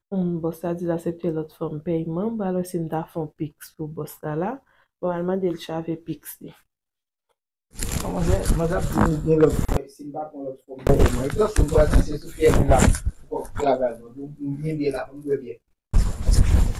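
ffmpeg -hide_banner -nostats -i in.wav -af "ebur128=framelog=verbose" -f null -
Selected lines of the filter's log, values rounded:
Integrated loudness:
  I:         -24.1 LUFS
  Threshold: -34.6 LUFS
Loudness range:
  LRA:         8.5 LU
  Threshold: -44.6 LUFS
  LRA low:   -29.7 LUFS
  LRA high:  -21.1 LUFS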